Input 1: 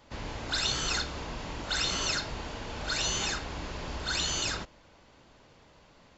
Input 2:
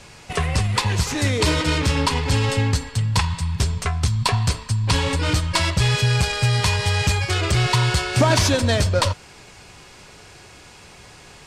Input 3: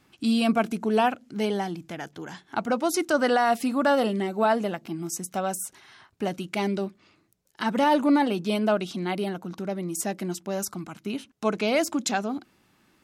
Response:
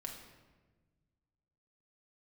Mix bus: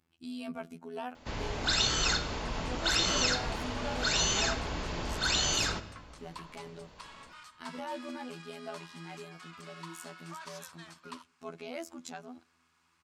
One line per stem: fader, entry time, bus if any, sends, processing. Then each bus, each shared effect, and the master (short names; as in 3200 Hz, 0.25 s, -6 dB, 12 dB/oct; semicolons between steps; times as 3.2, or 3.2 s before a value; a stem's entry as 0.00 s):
-1.0 dB, 1.15 s, send -4 dB, dry
-18.5 dB, 2.10 s, no send, ladder high-pass 1000 Hz, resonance 60%
-16.0 dB, 0.00 s, send -22.5 dB, bell 69 Hz +11.5 dB 1.2 oct; robotiser 83.2 Hz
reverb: on, RT60 1.3 s, pre-delay 5 ms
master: dry